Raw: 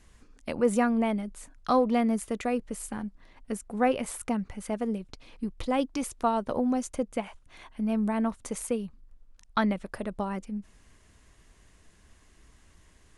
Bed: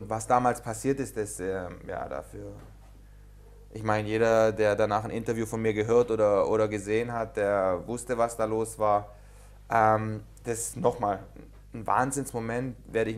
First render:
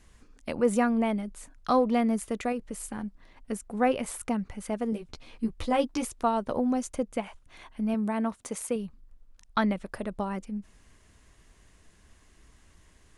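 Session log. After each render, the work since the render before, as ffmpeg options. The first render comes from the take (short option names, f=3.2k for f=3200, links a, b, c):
-filter_complex "[0:a]asettb=1/sr,asplit=3[a][b][c];[a]atrim=end=2.524[d];[b]atrim=start=2.52:end=2.98,asetpts=PTS-STARTPTS,afade=t=in:d=0.004:c=qsin,afade=t=out:st=0.456:d=0.004:c=qsin,acompressor=threshold=-31dB:ratio=2:attack=3.2:release=140:knee=1:detection=peak[e];[c]atrim=start=2.976[f];[d][e]acrossfade=d=0.004:c1=hsin:c2=qsin[g];[g][f]acrossfade=d=0.004:c1=qsin:c2=hsin,asettb=1/sr,asplit=3[h][i][j];[h]atrim=end=4.914[k];[i]atrim=start=4.91:end=6.05,asetpts=PTS-STARTPTS,afade=t=in:d=0.004:c=qsin,afade=t=out:st=1.136:d=0.004:c=qsin,asplit=2[l][m];[m]adelay=13,volume=-2.5dB[n];[l][n]amix=inputs=2:normalize=0,atrim=end_sample=50274[o];[j]atrim=start=6.046[p];[k][o]acrossfade=d=0.004:c1=hsin:c2=qsin[q];[q][p]acrossfade=d=0.004:c1=qsin:c2=hsin,asettb=1/sr,asplit=3[r][s][t];[r]atrim=end=7.944[u];[s]atrim=start=7.94:end=8.76,asetpts=PTS-STARTPTS,afade=t=in:d=0.004:c=qsin,afade=t=out:st=0.816:d=0.004:c=qsin,highpass=f=150:p=1[v];[t]atrim=start=8.756[w];[u][v]acrossfade=d=0.004:c1=hsin:c2=qsin[x];[x][w]acrossfade=d=0.004:c1=qsin:c2=hsin"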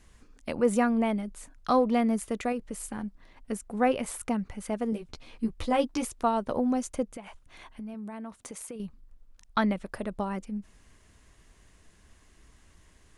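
-filter_complex "[0:a]asettb=1/sr,asplit=3[a][b][c];[a]atrim=end=7.154[d];[b]atrim=start=7.15:end=8.8,asetpts=PTS-STARTPTS,afade=t=in:d=0.004:c=qsin,afade=t=out:st=1.646:d=0.004:c=qsin,acompressor=threshold=-37dB:ratio=6:attack=3.2:release=140:knee=1:detection=peak[e];[c]atrim=start=8.796[f];[d][e]acrossfade=d=0.004:c1=hsin:c2=qsin[g];[g][f]acrossfade=d=0.004:c1=qsin:c2=hsin"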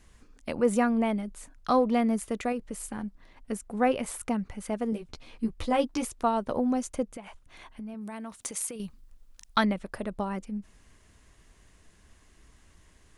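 -filter_complex "[0:a]asettb=1/sr,asplit=3[a][b][c];[a]atrim=end=8.014[d];[b]atrim=start=8.01:end=9.65,asetpts=PTS-STARTPTS,afade=t=in:d=0.004:c=qsin,afade=t=out:st=1.636:d=0.004:c=qsin,highshelf=f=2.3k:g=10[e];[c]atrim=start=9.646[f];[d][e]acrossfade=d=0.004:c1=hsin:c2=qsin[g];[g][f]acrossfade=d=0.004:c1=qsin:c2=hsin"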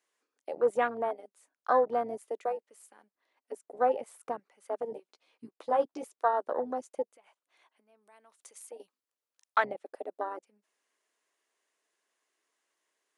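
-af "highpass=f=390:w=0.5412,highpass=f=390:w=1.3066,afwtdn=0.0251"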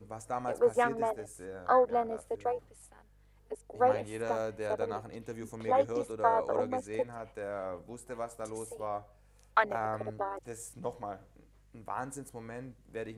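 -filter_complex "[1:a]volume=-12.5dB[a];[0:a][a]amix=inputs=2:normalize=0"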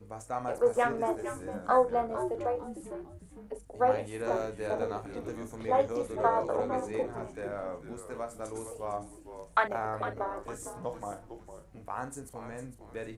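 -filter_complex "[0:a]asplit=2[a][b];[b]adelay=39,volume=-9.5dB[c];[a][c]amix=inputs=2:normalize=0,asplit=5[d][e][f][g][h];[e]adelay=454,afreqshift=-140,volume=-10dB[i];[f]adelay=908,afreqshift=-280,volume=-18.9dB[j];[g]adelay=1362,afreqshift=-420,volume=-27.7dB[k];[h]adelay=1816,afreqshift=-560,volume=-36.6dB[l];[d][i][j][k][l]amix=inputs=5:normalize=0"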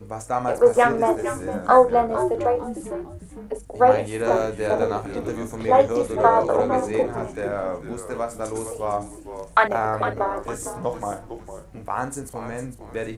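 -af "volume=10.5dB,alimiter=limit=-2dB:level=0:latency=1"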